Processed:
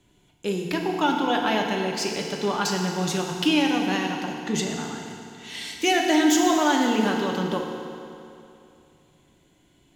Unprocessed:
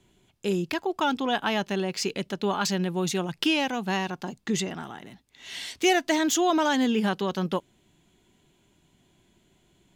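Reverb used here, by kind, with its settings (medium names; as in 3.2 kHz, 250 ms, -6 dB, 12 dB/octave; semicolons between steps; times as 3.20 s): FDN reverb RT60 2.7 s, high-frequency decay 0.85×, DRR 0.5 dB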